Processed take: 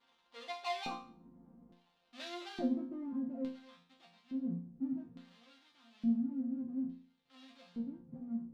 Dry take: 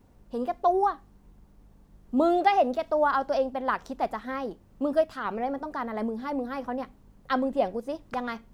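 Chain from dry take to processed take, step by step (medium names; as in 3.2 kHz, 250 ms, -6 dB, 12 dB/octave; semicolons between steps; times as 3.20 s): spectral noise reduction 12 dB; low-pass sweep 1.1 kHz -> 140 Hz, 1.62–3.53 s; power-law waveshaper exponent 0.5; LFO band-pass square 0.58 Hz 240–3700 Hz; chord resonator F3 sus4, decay 0.45 s; trim +9.5 dB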